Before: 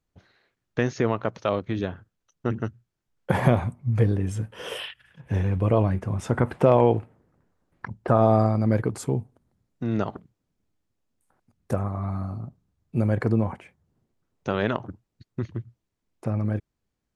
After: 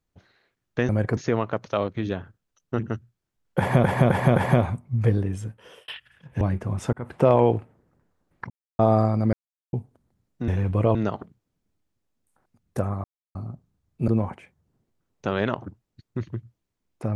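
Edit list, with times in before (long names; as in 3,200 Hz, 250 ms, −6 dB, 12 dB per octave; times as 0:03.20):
0:03.30–0:03.56: repeat, 4 plays
0:04.13–0:04.82: fade out
0:05.35–0:05.82: move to 0:09.89
0:06.34–0:06.66: fade in
0:07.91–0:08.20: silence
0:08.74–0:09.14: silence
0:11.98–0:12.29: silence
0:13.02–0:13.30: move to 0:00.89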